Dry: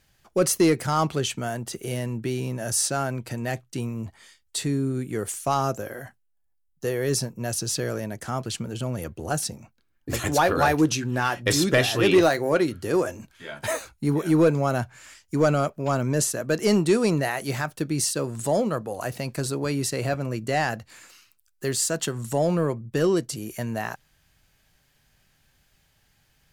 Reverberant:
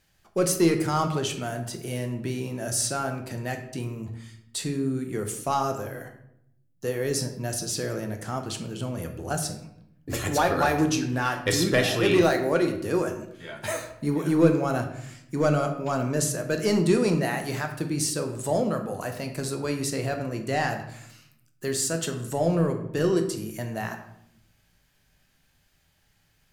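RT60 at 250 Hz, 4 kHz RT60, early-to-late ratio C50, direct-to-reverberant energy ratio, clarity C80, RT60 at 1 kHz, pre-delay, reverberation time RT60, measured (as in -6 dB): 1.1 s, 0.55 s, 8.5 dB, 5.0 dB, 11.5 dB, 0.65 s, 12 ms, 0.75 s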